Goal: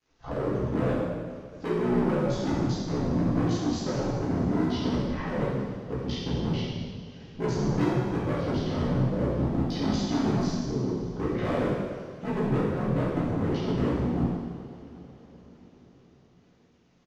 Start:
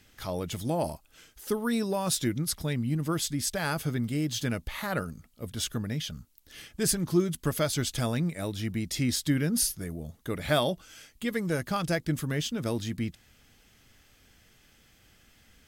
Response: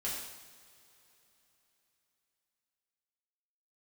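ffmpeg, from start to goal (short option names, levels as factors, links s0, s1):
-filter_complex "[0:a]afwtdn=0.0126,equalizer=f=490:w=0.5:g=14,acrossover=split=450[s0][s1];[s1]acompressor=threshold=0.0158:ratio=6[s2];[s0][s2]amix=inputs=2:normalize=0,acrusher=bits=10:mix=0:aa=0.000001,aresample=16000,asoftclip=type=tanh:threshold=0.119,aresample=44100,aeval=exprs='val(0)*sin(2*PI*32*n/s)':c=same,volume=22.4,asoftclip=hard,volume=0.0447[s3];[1:a]atrim=start_sample=2205,asetrate=30870,aresample=44100[s4];[s3][s4]afir=irnorm=-1:irlink=0,asetrate=40517,aresample=44100"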